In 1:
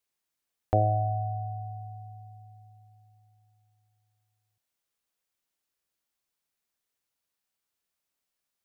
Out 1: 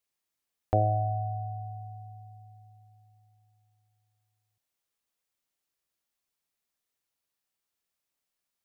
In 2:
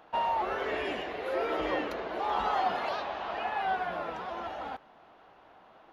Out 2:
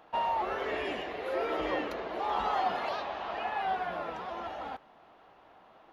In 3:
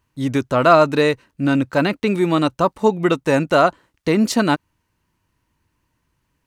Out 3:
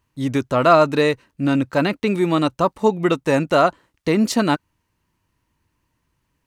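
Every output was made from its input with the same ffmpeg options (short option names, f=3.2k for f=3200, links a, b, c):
-af "bandreject=f=1.5k:w=28,volume=-1dB"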